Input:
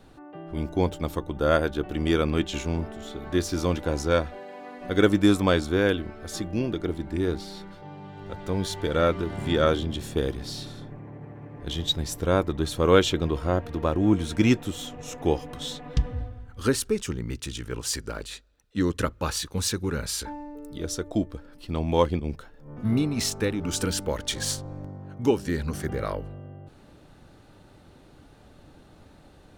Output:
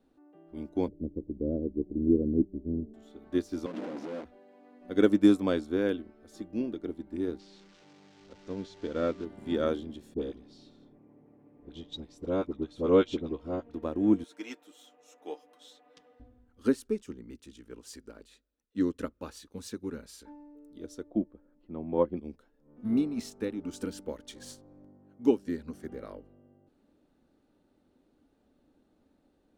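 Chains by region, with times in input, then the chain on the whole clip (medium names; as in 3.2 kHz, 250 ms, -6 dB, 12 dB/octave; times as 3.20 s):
0.88–2.94 s: inverse Chebyshev low-pass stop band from 2 kHz, stop band 70 dB + bass shelf 290 Hz +7 dB
3.66–4.25 s: one-bit comparator + high-pass 160 Hz 24 dB/octave + tape spacing loss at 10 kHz 24 dB
7.39–9.25 s: zero-crossing glitches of -19.5 dBFS + Bessel low-pass 3.9 kHz, order 6 + band-stop 840 Hz, Q 15
10.14–13.74 s: low-pass 5.6 kHz + peaking EQ 1.7 kHz -6 dB 0.32 oct + phase dispersion highs, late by 45 ms, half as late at 840 Hz
14.24–16.20 s: high-pass 660 Hz + comb 6.6 ms, depth 57%
21.10–22.17 s: low-pass 1.5 kHz + comb 5.5 ms, depth 33%
whole clip: ten-band graphic EQ 125 Hz -8 dB, 250 Hz +12 dB, 500 Hz +4 dB; upward expansion 1.5:1, over -32 dBFS; trim -8.5 dB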